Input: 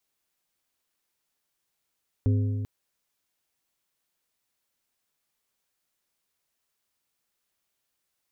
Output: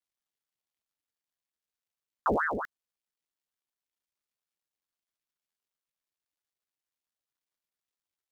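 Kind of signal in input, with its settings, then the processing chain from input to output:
metal hit plate, length 0.39 s, lowest mode 103 Hz, modes 4, decay 2.22 s, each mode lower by 8 dB, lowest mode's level -18.5 dB
dead-time distortion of 0.086 ms; Butterworth band-stop 870 Hz, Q 1.2; ring modulator with a swept carrier 1 kHz, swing 70%, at 4.5 Hz

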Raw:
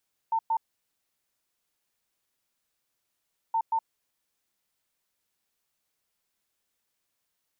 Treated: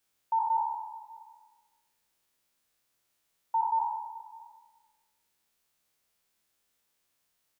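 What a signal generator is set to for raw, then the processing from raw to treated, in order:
beep pattern sine 902 Hz, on 0.07 s, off 0.11 s, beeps 2, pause 2.97 s, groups 2, -22.5 dBFS
spectral sustain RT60 1.25 s; delay 599 ms -22 dB

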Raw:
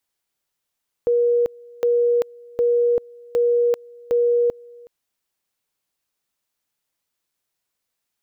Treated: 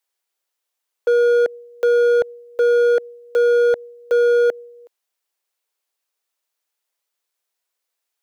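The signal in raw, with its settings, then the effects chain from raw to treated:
two-level tone 478 Hz -14.5 dBFS, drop 25.5 dB, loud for 0.39 s, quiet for 0.37 s, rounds 5
high-pass 380 Hz 24 dB/octave; dynamic bell 600 Hz, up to +8 dB, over -34 dBFS, Q 0.8; overload inside the chain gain 13 dB

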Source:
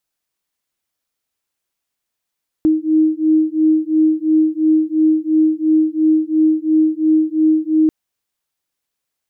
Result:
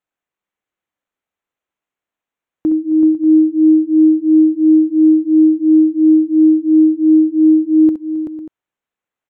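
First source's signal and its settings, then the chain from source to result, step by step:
beating tones 312 Hz, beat 2.9 Hz, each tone -14.5 dBFS 5.24 s
local Wiener filter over 9 samples; bass shelf 110 Hz -8.5 dB; multi-tap echo 63/67/267/381/500/587 ms -14/-11/-18.5/-7/-15.5/-15.5 dB

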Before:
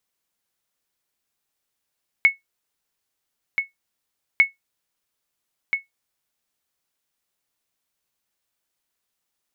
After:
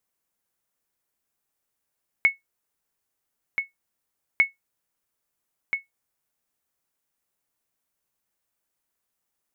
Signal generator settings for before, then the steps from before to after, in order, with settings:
sonar ping 2.2 kHz, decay 0.15 s, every 2.15 s, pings 2, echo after 1.33 s, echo -7.5 dB -6 dBFS
peaking EQ 3.8 kHz -6.5 dB 1.5 oct

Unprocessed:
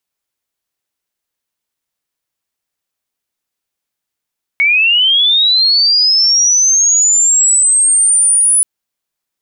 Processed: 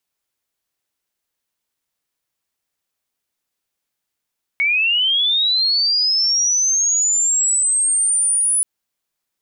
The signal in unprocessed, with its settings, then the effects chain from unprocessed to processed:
sweep linear 2.2 kHz -> 10 kHz -7.5 dBFS -> -7 dBFS 4.03 s
peak limiter -14 dBFS

